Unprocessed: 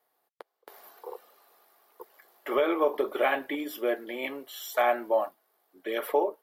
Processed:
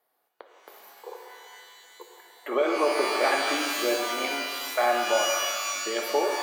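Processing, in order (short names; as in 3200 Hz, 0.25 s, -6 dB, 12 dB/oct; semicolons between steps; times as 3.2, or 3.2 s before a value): spectral gate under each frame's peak -30 dB strong; shimmer reverb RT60 2 s, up +12 st, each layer -2 dB, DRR 4 dB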